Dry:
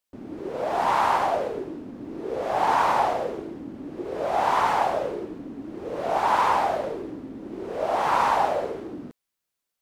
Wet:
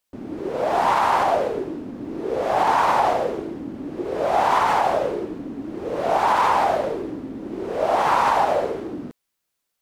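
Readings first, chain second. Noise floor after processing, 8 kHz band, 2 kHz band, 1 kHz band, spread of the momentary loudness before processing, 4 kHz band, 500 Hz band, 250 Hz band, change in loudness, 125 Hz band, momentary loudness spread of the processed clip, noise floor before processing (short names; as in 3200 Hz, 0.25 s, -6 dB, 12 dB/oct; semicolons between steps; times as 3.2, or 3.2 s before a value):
-78 dBFS, +3.5 dB, +3.5 dB, +3.5 dB, 16 LU, +3.5 dB, +4.5 dB, +4.5 dB, +3.5 dB, +4.5 dB, 14 LU, -83 dBFS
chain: limiter -14.5 dBFS, peak gain reduction 4.5 dB; gain +5 dB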